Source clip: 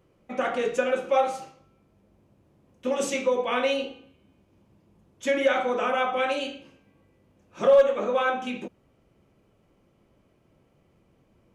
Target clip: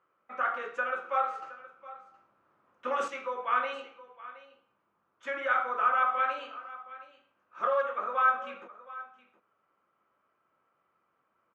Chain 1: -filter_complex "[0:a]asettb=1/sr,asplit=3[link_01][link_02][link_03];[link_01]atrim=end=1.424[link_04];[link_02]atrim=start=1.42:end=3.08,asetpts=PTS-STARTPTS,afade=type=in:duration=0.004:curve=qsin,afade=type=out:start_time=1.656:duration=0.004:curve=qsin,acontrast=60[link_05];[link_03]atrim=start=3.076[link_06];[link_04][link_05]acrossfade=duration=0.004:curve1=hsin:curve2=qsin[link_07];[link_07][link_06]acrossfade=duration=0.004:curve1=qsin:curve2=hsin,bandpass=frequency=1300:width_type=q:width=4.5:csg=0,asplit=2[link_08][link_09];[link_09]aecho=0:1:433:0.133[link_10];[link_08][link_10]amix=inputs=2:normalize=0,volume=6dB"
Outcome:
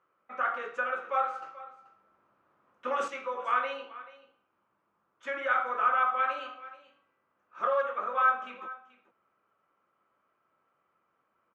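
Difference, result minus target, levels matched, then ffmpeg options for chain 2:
echo 285 ms early
-filter_complex "[0:a]asettb=1/sr,asplit=3[link_01][link_02][link_03];[link_01]atrim=end=1.424[link_04];[link_02]atrim=start=1.42:end=3.08,asetpts=PTS-STARTPTS,afade=type=in:duration=0.004:curve=qsin,afade=type=out:start_time=1.656:duration=0.004:curve=qsin,acontrast=60[link_05];[link_03]atrim=start=3.076[link_06];[link_04][link_05]acrossfade=duration=0.004:curve1=hsin:curve2=qsin[link_07];[link_07][link_06]acrossfade=duration=0.004:curve1=qsin:curve2=hsin,bandpass=frequency=1300:width_type=q:width=4.5:csg=0,asplit=2[link_08][link_09];[link_09]aecho=0:1:718:0.133[link_10];[link_08][link_10]amix=inputs=2:normalize=0,volume=6dB"

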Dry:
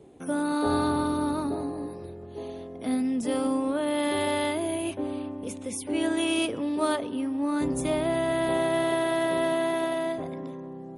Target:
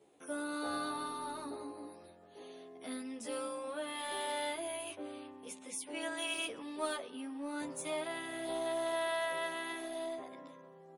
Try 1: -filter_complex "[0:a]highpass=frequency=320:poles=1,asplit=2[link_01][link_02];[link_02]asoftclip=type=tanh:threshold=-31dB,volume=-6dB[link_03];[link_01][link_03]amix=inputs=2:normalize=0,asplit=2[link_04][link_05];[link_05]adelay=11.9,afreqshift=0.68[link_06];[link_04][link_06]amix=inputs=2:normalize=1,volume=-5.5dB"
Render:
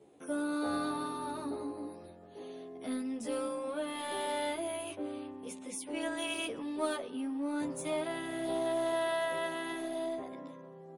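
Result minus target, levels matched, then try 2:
250 Hz band +4.0 dB
-filter_complex "[0:a]highpass=frequency=960:poles=1,asplit=2[link_01][link_02];[link_02]asoftclip=type=tanh:threshold=-31dB,volume=-6dB[link_03];[link_01][link_03]amix=inputs=2:normalize=0,asplit=2[link_04][link_05];[link_05]adelay=11.9,afreqshift=0.68[link_06];[link_04][link_06]amix=inputs=2:normalize=1,volume=-5.5dB"

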